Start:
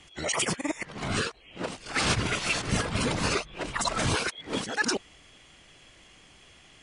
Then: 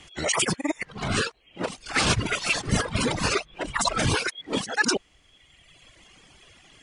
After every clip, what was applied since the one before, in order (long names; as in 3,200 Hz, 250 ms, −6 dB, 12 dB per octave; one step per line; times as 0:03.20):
reverb reduction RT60 1.5 s
level +4.5 dB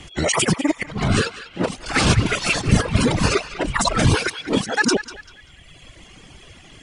low-shelf EQ 400 Hz +8 dB
in parallel at 0 dB: downward compressor, threshold −26 dBFS, peak gain reduction 14 dB
on the sum: feedback echo with a band-pass in the loop 195 ms, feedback 41%, band-pass 2,300 Hz, level −11.5 dB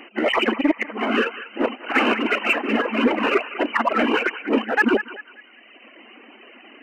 brick-wall band-pass 210–3,100 Hz
in parallel at −8.5 dB: hard clipping −23 dBFS, distortion −6 dB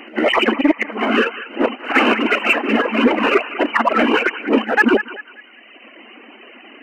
echo ahead of the sound 106 ms −22.5 dB
level +4.5 dB